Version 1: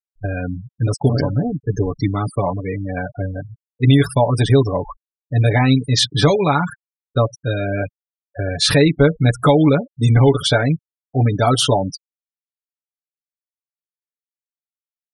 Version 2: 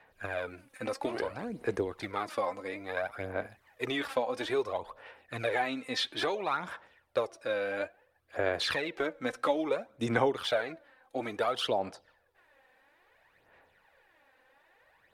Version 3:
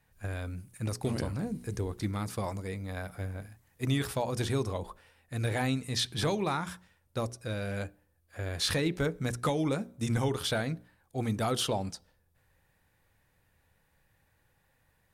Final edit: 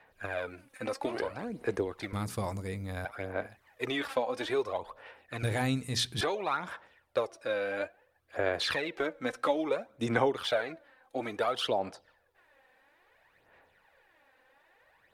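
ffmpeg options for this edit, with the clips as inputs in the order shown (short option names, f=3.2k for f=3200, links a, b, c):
-filter_complex "[2:a]asplit=2[a][b];[1:a]asplit=3[c][d][e];[c]atrim=end=2.132[f];[a]atrim=start=2.128:end=3.052[g];[d]atrim=start=3.048:end=5.432[h];[b]atrim=start=5.428:end=6.212[i];[e]atrim=start=6.208[j];[f][g]acrossfade=d=0.004:c1=hsin:c2=hsin[k];[k][h]acrossfade=d=0.004:c1=hsin:c2=hsin[l];[l][i]acrossfade=d=0.004:c1=hsin:c2=hsin[m];[m][j]acrossfade=d=0.004:c1=hsin:c2=hsin"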